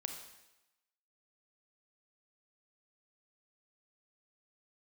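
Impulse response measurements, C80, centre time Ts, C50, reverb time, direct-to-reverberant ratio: 8.0 dB, 28 ms, 6.0 dB, 0.95 s, 4.5 dB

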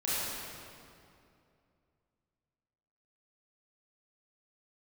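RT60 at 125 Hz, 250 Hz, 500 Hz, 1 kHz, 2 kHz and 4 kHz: 3.0, 2.9, 2.7, 2.4, 2.1, 1.8 s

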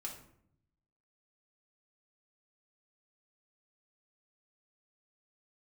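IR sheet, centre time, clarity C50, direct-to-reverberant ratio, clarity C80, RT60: 24 ms, 7.0 dB, -2.0 dB, 10.5 dB, 0.70 s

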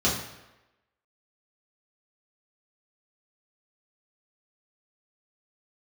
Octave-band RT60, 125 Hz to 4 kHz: 0.80, 0.85, 1.0, 1.0, 1.0, 0.80 s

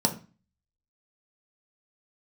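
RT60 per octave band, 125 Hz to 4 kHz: 0.50, 0.45, 0.30, 0.35, 0.35, 0.30 s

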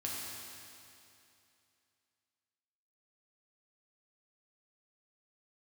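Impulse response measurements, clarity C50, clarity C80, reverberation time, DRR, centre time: -1.5 dB, 0.0 dB, 2.7 s, -4.5 dB, 0.151 s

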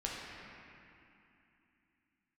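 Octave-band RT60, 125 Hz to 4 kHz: 3.2, 3.9, 2.6, 2.8, 3.1, 2.3 s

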